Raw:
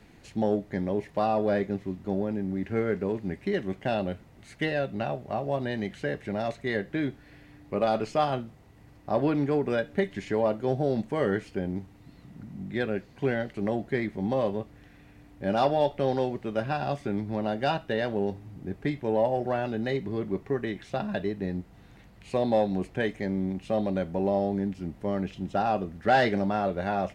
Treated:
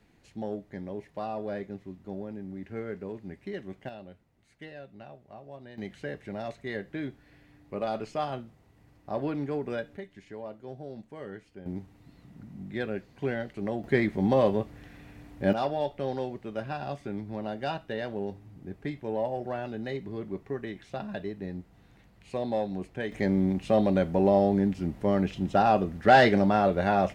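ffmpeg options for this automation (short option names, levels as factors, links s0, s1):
-af "asetnsamples=n=441:p=0,asendcmd='3.89 volume volume -16.5dB;5.78 volume volume -6dB;9.97 volume volume -15dB;11.66 volume volume -3.5dB;13.84 volume volume 4dB;15.53 volume volume -5.5dB;23.12 volume volume 4dB',volume=0.355"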